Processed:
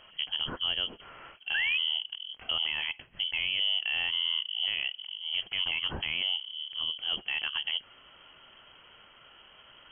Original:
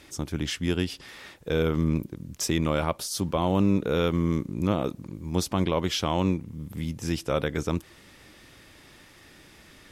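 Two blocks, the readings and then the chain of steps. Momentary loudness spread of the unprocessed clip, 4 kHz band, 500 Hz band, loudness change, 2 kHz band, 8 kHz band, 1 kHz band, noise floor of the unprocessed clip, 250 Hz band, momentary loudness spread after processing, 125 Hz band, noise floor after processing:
9 LU, +9.5 dB, -23.5 dB, -2.0 dB, +5.5 dB, under -40 dB, -13.5 dB, -53 dBFS, -26.5 dB, 9 LU, -24.5 dB, -57 dBFS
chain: painted sound fall, 1.54–1.78 s, 590–1700 Hz -21 dBFS; frequency inversion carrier 3.2 kHz; peak limiter -17 dBFS, peak gain reduction 7.5 dB; trim -2.5 dB

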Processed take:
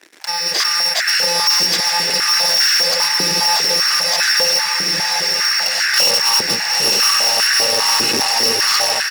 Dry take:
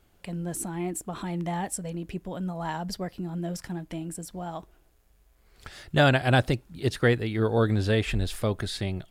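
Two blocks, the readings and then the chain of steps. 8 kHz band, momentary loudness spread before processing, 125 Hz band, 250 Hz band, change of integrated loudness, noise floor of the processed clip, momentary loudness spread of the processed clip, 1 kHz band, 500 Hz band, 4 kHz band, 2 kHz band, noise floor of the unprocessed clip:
+23.0 dB, 14 LU, -11.5 dB, -4.0 dB, +15.5 dB, -20 dBFS, 4 LU, +12.0 dB, +3.5 dB, +26.0 dB, +15.0 dB, -63 dBFS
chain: bit-reversed sample order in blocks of 128 samples; compression 2:1, threshold -47 dBFS, peak gain reduction 17 dB; band noise 1.4–2.4 kHz -57 dBFS; comb 1.1 ms, depth 34%; echo that smears into a reverb 957 ms, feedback 60%, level -3 dB; level rider gain up to 8 dB; resonant low-pass 5.1 kHz, resonance Q 4.9; waveshaping leveller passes 5; step-sequenced high-pass 5 Hz 340–1500 Hz

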